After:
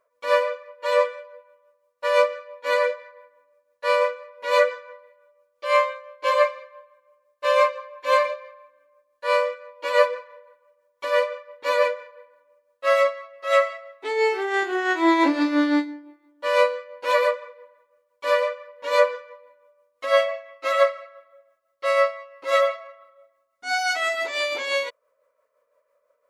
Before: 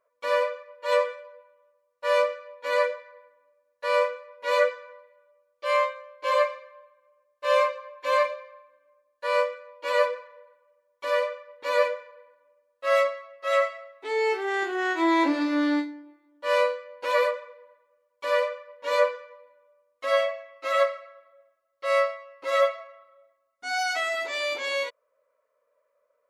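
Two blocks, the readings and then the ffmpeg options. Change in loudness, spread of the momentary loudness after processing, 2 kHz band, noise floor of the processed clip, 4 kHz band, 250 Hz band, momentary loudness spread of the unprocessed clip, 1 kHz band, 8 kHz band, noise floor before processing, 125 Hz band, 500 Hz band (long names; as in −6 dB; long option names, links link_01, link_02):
+3.5 dB, 13 LU, +3.5 dB, −72 dBFS, +3.5 dB, +3.5 dB, 12 LU, +3.5 dB, +3.5 dB, −75 dBFS, can't be measured, +3.5 dB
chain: -af "tremolo=f=5.9:d=0.47,volume=5.5dB"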